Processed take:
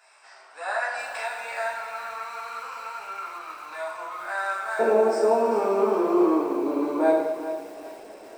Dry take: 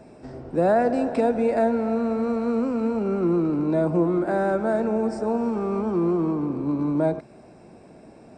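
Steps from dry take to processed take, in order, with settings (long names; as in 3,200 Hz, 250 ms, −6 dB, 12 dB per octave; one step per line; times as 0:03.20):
high-pass filter 1,100 Hz 24 dB per octave, from 0:04.79 370 Hz
convolution reverb, pre-delay 3 ms, DRR −6 dB
feedback echo at a low word length 397 ms, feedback 35%, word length 7 bits, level −12.5 dB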